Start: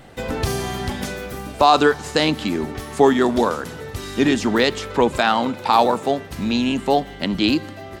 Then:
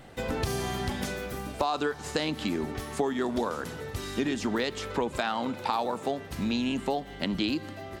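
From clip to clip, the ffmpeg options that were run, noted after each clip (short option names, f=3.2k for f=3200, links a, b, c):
-af "acompressor=threshold=-20dB:ratio=6,volume=-5dB"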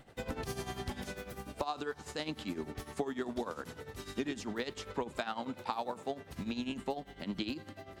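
-af "tremolo=f=10:d=0.76,volume=-5.5dB"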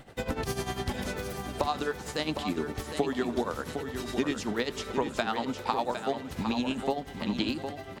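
-af "aecho=1:1:759|1518|2277|3036:0.398|0.131|0.0434|0.0143,volume=7dB"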